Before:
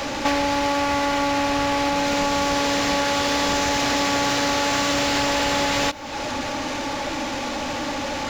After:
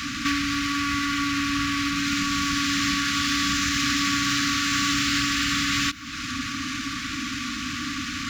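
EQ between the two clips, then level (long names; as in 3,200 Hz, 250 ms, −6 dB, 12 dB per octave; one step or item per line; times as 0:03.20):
high-pass filter 47 Hz
linear-phase brick-wall band-stop 310–1,100 Hz
0.0 dB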